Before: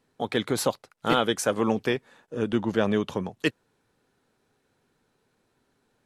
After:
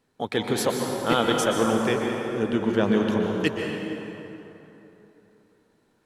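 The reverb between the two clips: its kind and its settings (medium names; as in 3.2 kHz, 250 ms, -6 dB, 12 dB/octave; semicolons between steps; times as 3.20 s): plate-style reverb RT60 3.3 s, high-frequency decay 0.6×, pre-delay 110 ms, DRR 1 dB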